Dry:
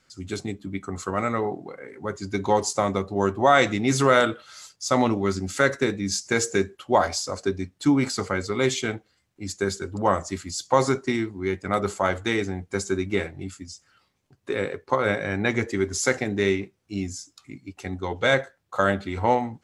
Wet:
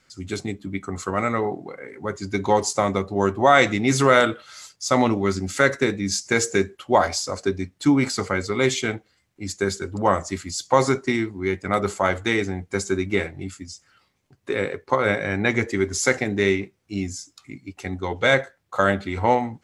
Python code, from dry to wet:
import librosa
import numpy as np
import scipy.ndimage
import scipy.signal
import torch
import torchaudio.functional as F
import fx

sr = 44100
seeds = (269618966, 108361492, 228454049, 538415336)

y = fx.peak_eq(x, sr, hz=2100.0, db=3.0, octaves=0.34)
y = y * librosa.db_to_amplitude(2.0)